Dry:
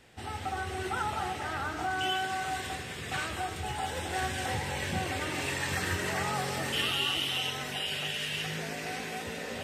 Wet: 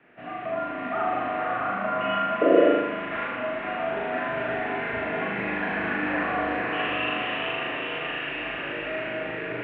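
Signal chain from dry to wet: echo that smears into a reverb 476 ms, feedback 48%, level -4 dB; painted sound noise, 2.41–2.71 s, 370–810 Hz -22 dBFS; on a send: flutter echo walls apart 6.7 m, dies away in 0.88 s; on the sum: mistuned SSB -110 Hz 280–2600 Hz; trim +2 dB

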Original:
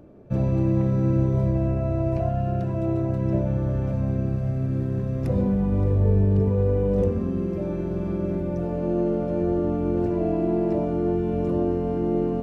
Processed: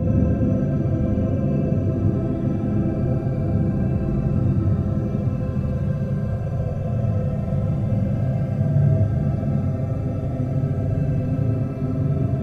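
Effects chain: Paulstretch 29×, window 0.05 s, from 4.19 s; gated-style reverb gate 160 ms flat, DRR -5.5 dB; trim -1.5 dB

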